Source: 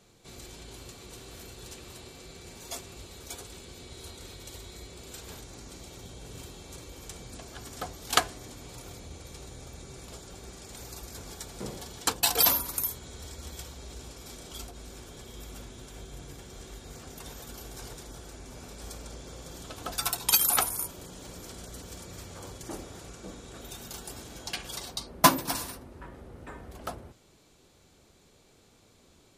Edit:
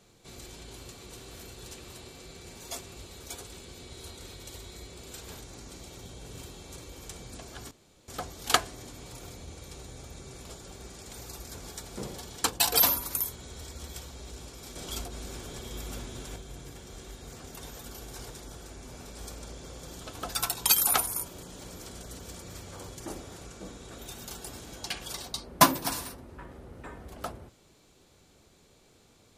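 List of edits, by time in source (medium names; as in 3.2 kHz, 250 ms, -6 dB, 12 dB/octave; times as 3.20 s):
7.71 s: insert room tone 0.37 s
14.39–15.99 s: gain +5 dB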